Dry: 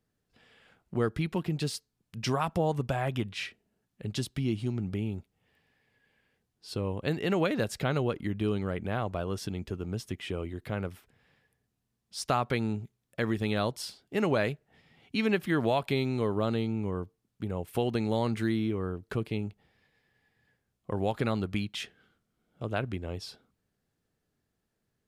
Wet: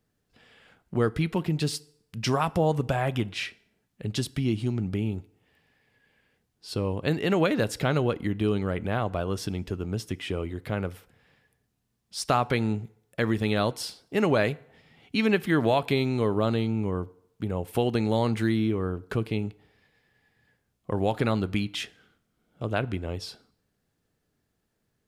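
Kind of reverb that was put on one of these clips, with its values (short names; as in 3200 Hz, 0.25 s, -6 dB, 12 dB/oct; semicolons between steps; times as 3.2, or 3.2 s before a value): FDN reverb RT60 0.75 s, low-frequency decay 0.75×, high-frequency decay 0.75×, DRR 18.5 dB; gain +4 dB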